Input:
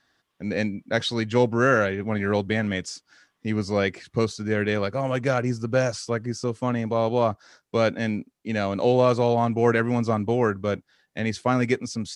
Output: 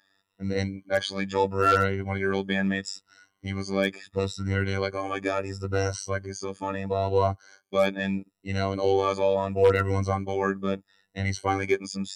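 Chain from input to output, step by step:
rippled gain that drifts along the octave scale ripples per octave 2, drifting +0.75 Hz, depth 20 dB
phases set to zero 97.1 Hz
wave folding −5.5 dBFS
level −3.5 dB

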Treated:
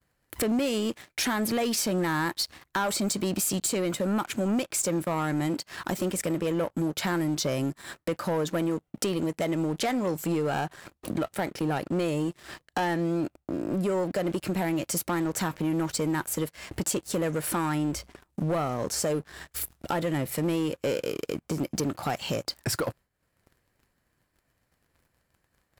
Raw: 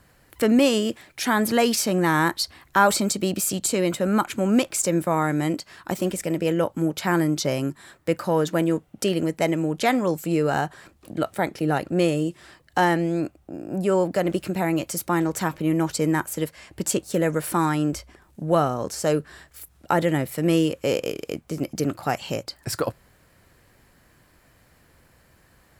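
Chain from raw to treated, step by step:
downward compressor 3 to 1, threshold −39 dBFS, peak gain reduction 19.5 dB
downward expander −49 dBFS
leveller curve on the samples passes 3

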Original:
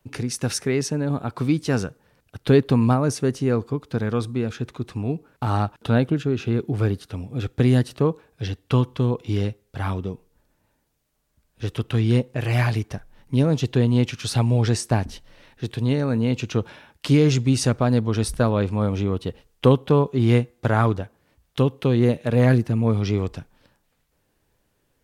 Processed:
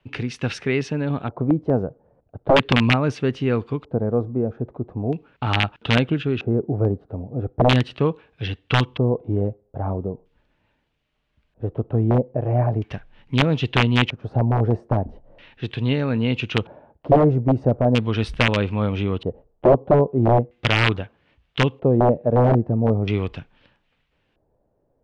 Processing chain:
wrap-around overflow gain 10 dB
auto-filter low-pass square 0.39 Hz 650–2,900 Hz

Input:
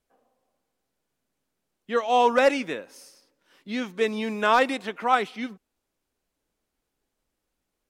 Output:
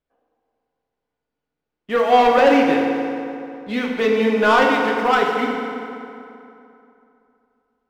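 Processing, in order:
low-pass filter 3,400 Hz 12 dB per octave
leveller curve on the samples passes 2
feedback delay network reverb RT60 2.8 s, high-frequency decay 0.65×, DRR −0.5 dB
level −1 dB

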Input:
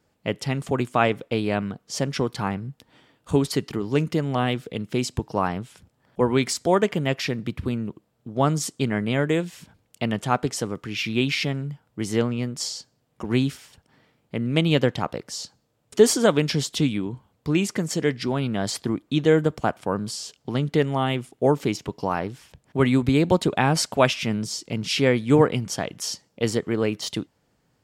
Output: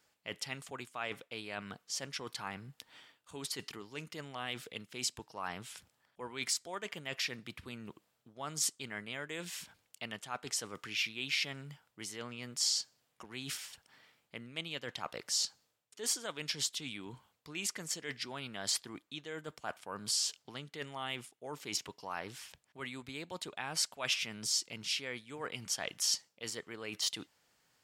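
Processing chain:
reversed playback
downward compressor 16 to 1, threshold −30 dBFS, peak gain reduction 22 dB
reversed playback
tilt shelving filter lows −9.5 dB, about 700 Hz
level −6.5 dB

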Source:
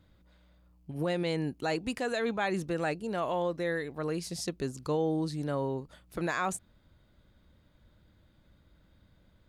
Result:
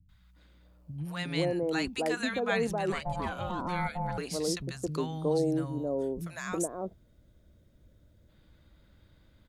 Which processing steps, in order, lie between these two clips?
three-band delay without the direct sound lows, highs, mids 90/360 ms, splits 190/890 Hz
0:02.92–0:04.18: ring modulation 360 Hz
0:05.38–0:08.29: gain on a spectral selection 730–5,100 Hz −8 dB
level +3 dB

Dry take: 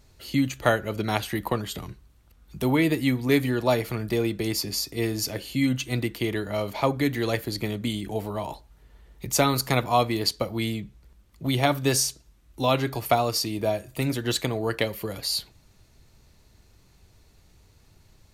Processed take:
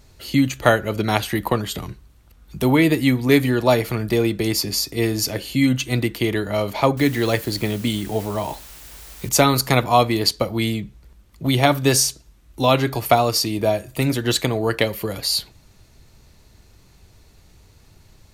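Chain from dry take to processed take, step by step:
0:06.97–0:09.29: bit-depth reduction 8 bits, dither triangular
level +6 dB

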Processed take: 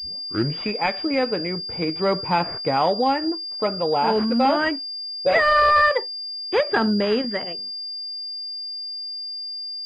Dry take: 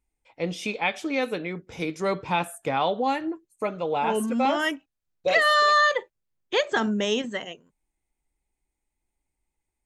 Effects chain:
turntable start at the beginning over 0.60 s
soft clipping −11 dBFS, distortion −24 dB
switching amplifier with a slow clock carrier 4,800 Hz
level +5 dB

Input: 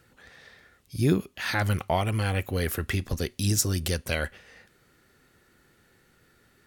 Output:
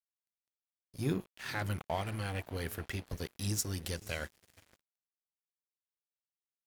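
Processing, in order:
mains-hum notches 60/120/180/240/300/360/420 Hz
feedback delay with all-pass diffusion 520 ms, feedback 49%, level −16 dB
dead-zone distortion −38 dBFS
level −8.5 dB

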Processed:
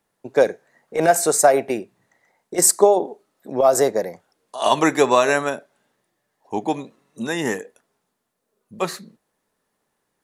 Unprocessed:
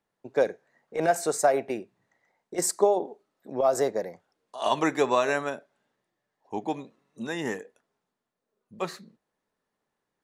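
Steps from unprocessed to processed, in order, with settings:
parametric band 11,000 Hz +8 dB 1.1 octaves
level +7.5 dB

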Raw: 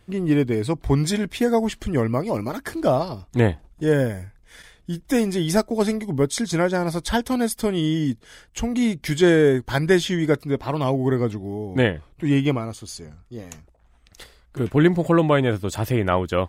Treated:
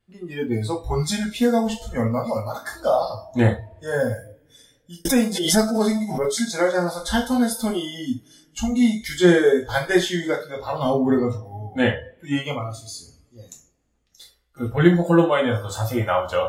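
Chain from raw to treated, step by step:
0:10.71–0:11.18: low-shelf EQ 270 Hz +8.5 dB
coupled-rooms reverb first 0.36 s, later 2.6 s, from −21 dB, DRR −1.5 dB
noise reduction from a noise print of the clip's start 17 dB
0:05.05–0:06.29: background raised ahead of every attack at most 65 dB per second
level −2.5 dB

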